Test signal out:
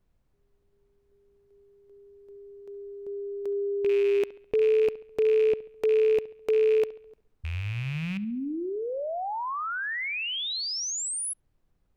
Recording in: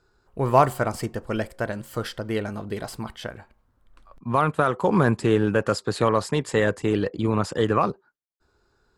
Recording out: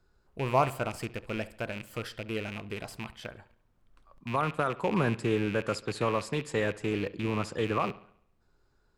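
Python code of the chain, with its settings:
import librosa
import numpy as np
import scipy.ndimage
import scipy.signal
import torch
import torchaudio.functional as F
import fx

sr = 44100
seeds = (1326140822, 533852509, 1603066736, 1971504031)

y = fx.rattle_buzz(x, sr, strikes_db=-30.0, level_db=-20.0)
y = fx.dmg_noise_colour(y, sr, seeds[0], colour='brown', level_db=-61.0)
y = fx.echo_bbd(y, sr, ms=69, stages=2048, feedback_pct=48, wet_db=-18.5)
y = y * 10.0 ** (-8.0 / 20.0)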